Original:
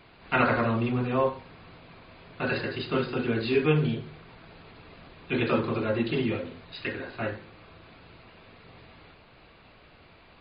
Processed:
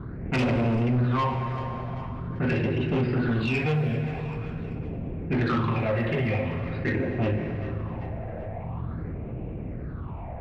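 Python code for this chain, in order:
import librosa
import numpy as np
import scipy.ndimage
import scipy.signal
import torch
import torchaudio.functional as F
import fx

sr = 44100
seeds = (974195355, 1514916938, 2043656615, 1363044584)

p1 = fx.lowpass(x, sr, hz=2200.0, slope=6)
p2 = fx.env_lowpass(p1, sr, base_hz=690.0, full_db=-21.5)
p3 = fx.highpass(p2, sr, hz=64.0, slope=6)
p4 = fx.low_shelf(p3, sr, hz=250.0, db=5.5)
p5 = fx.rider(p4, sr, range_db=5, speed_s=2.0)
p6 = p4 + (p5 * librosa.db_to_amplitude(-1.5))
p7 = fx.quant_float(p6, sr, bits=8)
p8 = fx.phaser_stages(p7, sr, stages=6, low_hz=290.0, high_hz=1300.0, hz=0.45, feedback_pct=45)
p9 = 10.0 ** (-22.5 / 20.0) * np.tanh(p8 / 10.0 ** (-22.5 / 20.0))
p10 = p9 + fx.echo_feedback(p9, sr, ms=389, feedback_pct=43, wet_db=-20, dry=0)
p11 = fx.rev_plate(p10, sr, seeds[0], rt60_s=3.0, hf_ratio=0.75, predelay_ms=0, drr_db=10.0)
y = fx.env_flatten(p11, sr, amount_pct=50)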